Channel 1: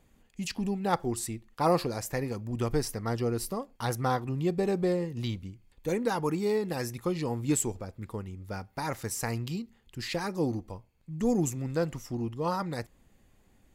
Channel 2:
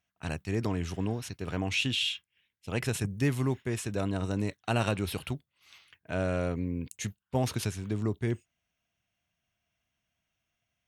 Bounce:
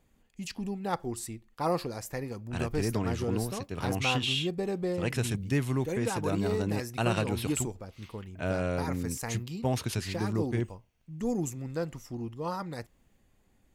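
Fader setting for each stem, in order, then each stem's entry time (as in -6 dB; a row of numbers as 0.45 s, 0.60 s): -4.0 dB, -0.5 dB; 0.00 s, 2.30 s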